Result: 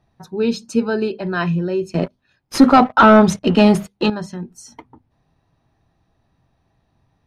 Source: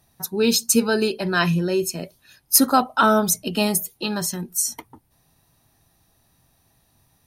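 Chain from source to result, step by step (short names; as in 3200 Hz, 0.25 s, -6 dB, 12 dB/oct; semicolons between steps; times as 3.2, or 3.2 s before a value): notches 50/100/150/200/250 Hz; 1.94–4.1 sample leveller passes 3; tape spacing loss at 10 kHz 28 dB; gain +2 dB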